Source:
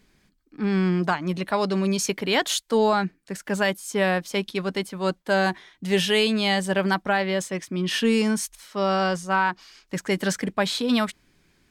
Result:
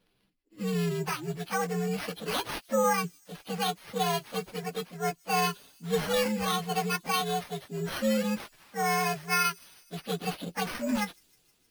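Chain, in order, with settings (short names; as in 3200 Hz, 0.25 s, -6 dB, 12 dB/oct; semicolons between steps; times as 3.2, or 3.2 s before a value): inharmonic rescaling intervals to 129%; low shelf 210 Hz -7 dB; careless resampling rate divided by 6×, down none, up hold; thin delay 0.156 s, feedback 71%, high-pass 5300 Hz, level -21 dB; gain -3 dB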